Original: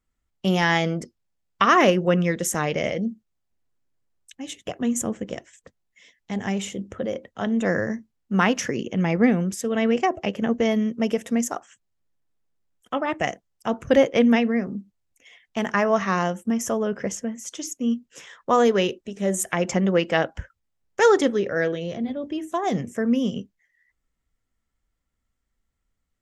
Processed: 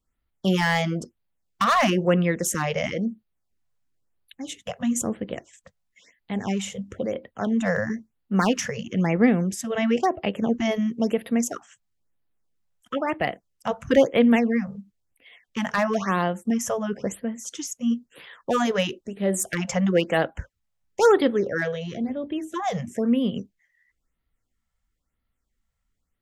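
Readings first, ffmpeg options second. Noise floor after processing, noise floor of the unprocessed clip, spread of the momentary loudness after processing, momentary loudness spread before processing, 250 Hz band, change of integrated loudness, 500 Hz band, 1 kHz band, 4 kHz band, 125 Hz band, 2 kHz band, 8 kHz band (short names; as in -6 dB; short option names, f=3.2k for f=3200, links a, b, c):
-78 dBFS, -78 dBFS, 13 LU, 14 LU, -0.5 dB, -1.0 dB, -1.5 dB, -2.0 dB, -1.0 dB, 0.0 dB, -2.0 dB, -0.5 dB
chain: -filter_complex "[0:a]acrossover=split=700[a][b];[b]asoftclip=type=hard:threshold=-18dB[c];[a][c]amix=inputs=2:normalize=0,afftfilt=real='re*(1-between(b*sr/1024,290*pow(7200/290,0.5+0.5*sin(2*PI*1*pts/sr))/1.41,290*pow(7200/290,0.5+0.5*sin(2*PI*1*pts/sr))*1.41))':imag='im*(1-between(b*sr/1024,290*pow(7200/290,0.5+0.5*sin(2*PI*1*pts/sr))/1.41,290*pow(7200/290,0.5+0.5*sin(2*PI*1*pts/sr))*1.41))':win_size=1024:overlap=0.75"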